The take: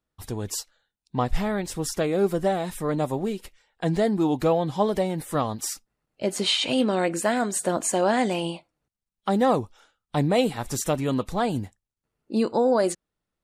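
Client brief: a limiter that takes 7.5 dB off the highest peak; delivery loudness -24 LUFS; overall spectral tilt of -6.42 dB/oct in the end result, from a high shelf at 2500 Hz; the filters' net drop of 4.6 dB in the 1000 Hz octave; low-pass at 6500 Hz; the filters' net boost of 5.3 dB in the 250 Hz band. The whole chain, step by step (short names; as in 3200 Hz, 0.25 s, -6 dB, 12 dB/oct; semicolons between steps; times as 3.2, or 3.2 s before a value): LPF 6500 Hz; bell 250 Hz +7 dB; bell 1000 Hz -6.5 dB; high shelf 2500 Hz -6.5 dB; gain +2 dB; limiter -13 dBFS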